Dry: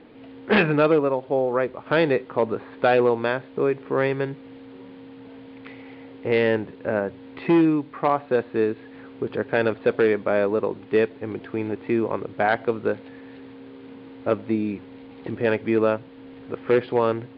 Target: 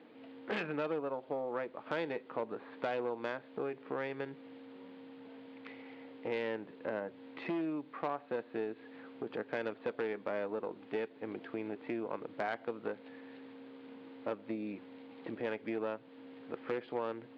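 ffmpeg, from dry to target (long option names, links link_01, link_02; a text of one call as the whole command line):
ffmpeg -i in.wav -af "acompressor=threshold=-27dB:ratio=3,aeval=exprs='(tanh(7.94*val(0)+0.5)-tanh(0.5))/7.94':channel_layout=same,highpass=220,bandreject=frequency=390:width=12,volume=-5.5dB" out.wav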